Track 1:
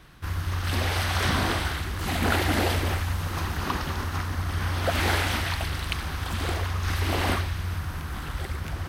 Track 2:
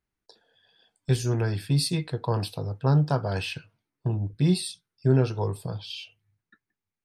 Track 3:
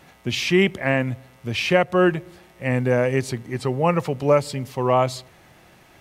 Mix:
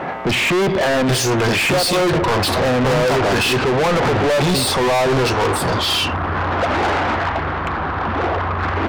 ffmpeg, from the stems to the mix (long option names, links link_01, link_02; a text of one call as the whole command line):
ffmpeg -i stem1.wav -i stem2.wav -i stem3.wav -filter_complex "[0:a]aemphasis=mode=reproduction:type=75kf,adelay=1750,volume=-11dB[link_01];[1:a]volume=-4.5dB[link_02];[2:a]volume=-1dB[link_03];[link_01][link_03]amix=inputs=2:normalize=0,lowpass=1100,alimiter=limit=-18.5dB:level=0:latency=1:release=47,volume=0dB[link_04];[link_02][link_04]amix=inputs=2:normalize=0,asplit=2[link_05][link_06];[link_06]highpass=frequency=720:poles=1,volume=41dB,asoftclip=type=tanh:threshold=-9.5dB[link_07];[link_05][link_07]amix=inputs=2:normalize=0,lowpass=frequency=5900:poles=1,volume=-6dB" out.wav